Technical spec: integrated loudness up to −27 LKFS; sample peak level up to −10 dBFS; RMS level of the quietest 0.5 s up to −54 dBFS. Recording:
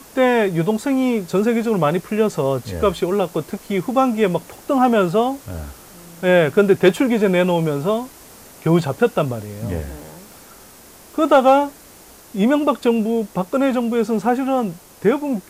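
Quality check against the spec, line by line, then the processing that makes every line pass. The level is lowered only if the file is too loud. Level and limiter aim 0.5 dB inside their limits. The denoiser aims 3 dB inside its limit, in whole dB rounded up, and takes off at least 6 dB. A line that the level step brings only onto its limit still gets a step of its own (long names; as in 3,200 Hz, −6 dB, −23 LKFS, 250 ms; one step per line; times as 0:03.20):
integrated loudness −18.5 LKFS: out of spec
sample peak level −3.5 dBFS: out of spec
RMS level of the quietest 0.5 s −44 dBFS: out of spec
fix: broadband denoise 6 dB, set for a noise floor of −44 dBFS
level −9 dB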